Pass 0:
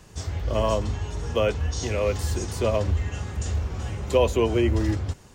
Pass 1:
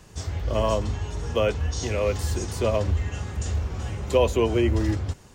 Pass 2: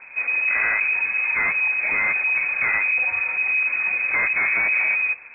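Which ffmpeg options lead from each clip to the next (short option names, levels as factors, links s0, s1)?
-af anull
-af "volume=20,asoftclip=hard,volume=0.0501,acrusher=bits=4:mode=log:mix=0:aa=0.000001,lowpass=f=2200:t=q:w=0.5098,lowpass=f=2200:t=q:w=0.6013,lowpass=f=2200:t=q:w=0.9,lowpass=f=2200:t=q:w=2.563,afreqshift=-2600,volume=2.51"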